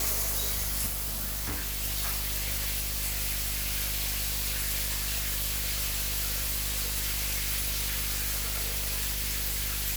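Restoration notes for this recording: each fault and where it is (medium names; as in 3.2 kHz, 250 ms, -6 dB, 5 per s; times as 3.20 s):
buzz 50 Hz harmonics 34 -36 dBFS
0.86–1.83 s: clipped -28.5 dBFS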